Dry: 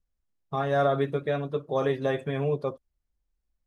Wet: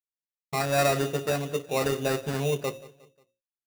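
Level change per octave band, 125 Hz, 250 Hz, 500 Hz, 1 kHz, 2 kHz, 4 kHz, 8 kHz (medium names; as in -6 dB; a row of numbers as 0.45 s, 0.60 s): 0.0 dB, 0.0 dB, -1.0 dB, 0.0 dB, +4.0 dB, +8.5 dB, no reading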